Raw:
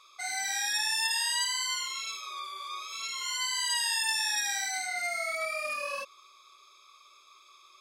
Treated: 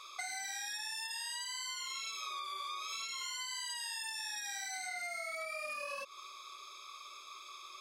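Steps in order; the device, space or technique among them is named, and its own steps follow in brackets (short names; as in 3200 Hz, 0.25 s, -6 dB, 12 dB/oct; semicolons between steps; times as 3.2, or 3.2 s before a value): serial compression, peaks first (compressor, threshold -38 dBFS, peak gain reduction 12.5 dB; compressor 3:1, threshold -47 dBFS, peak gain reduction 8.5 dB); gain +6.5 dB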